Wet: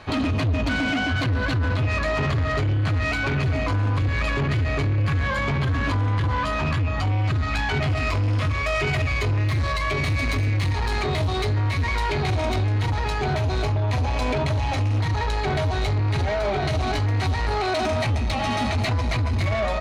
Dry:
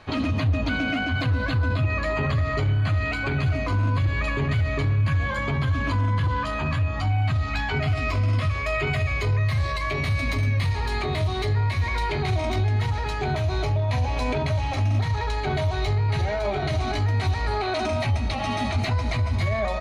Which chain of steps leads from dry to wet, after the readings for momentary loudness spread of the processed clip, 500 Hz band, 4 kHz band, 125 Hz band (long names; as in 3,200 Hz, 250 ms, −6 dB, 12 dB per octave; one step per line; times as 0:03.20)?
1 LU, +2.0 dB, +2.5 dB, +0.5 dB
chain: harmonic generator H 5 −16 dB, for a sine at −15 dBFS